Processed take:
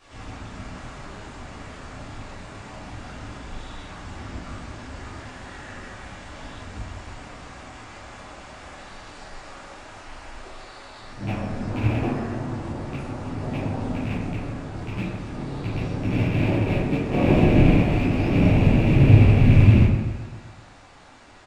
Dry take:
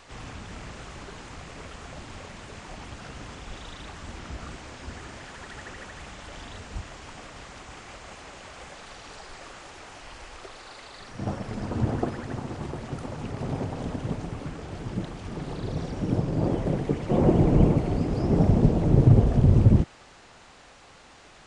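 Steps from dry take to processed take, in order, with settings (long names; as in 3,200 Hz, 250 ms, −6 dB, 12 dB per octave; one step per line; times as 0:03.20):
loose part that buzzes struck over −25 dBFS, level −19 dBFS
repeating echo 130 ms, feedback 58%, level −13 dB
convolution reverb RT60 1.0 s, pre-delay 8 ms, DRR −11.5 dB
level −10 dB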